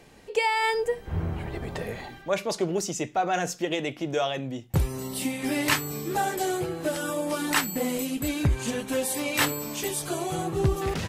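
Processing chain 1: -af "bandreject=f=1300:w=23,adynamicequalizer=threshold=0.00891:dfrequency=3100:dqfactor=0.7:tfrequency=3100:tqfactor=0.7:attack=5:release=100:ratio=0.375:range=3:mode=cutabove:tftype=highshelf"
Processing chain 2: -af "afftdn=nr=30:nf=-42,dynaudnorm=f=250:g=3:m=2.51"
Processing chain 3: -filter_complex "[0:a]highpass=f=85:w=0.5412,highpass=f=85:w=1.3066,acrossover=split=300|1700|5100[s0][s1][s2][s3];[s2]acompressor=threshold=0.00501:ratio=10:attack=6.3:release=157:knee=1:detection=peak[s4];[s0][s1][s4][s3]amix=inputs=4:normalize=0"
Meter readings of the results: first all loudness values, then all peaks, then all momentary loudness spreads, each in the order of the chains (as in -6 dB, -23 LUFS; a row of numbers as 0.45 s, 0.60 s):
-28.5 LUFS, -20.5 LUFS, -29.0 LUFS; -10.0 dBFS, -3.0 dBFS, -12.0 dBFS; 6 LU, 6 LU, 6 LU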